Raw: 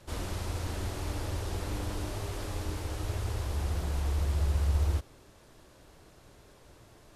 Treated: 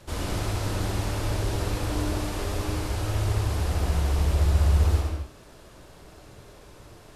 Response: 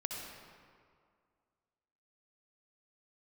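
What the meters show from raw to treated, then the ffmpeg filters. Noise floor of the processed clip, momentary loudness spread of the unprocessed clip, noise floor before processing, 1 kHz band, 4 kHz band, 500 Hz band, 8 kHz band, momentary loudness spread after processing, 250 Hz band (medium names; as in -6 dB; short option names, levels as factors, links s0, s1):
-50 dBFS, 8 LU, -57 dBFS, +7.5 dB, +7.5 dB, +7.5 dB, +6.5 dB, 8 LU, +8.5 dB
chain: -filter_complex "[1:a]atrim=start_sample=2205,afade=t=out:st=0.32:d=0.01,atrim=end_sample=14553[s0];[0:a][s0]afir=irnorm=-1:irlink=0,volume=2.24"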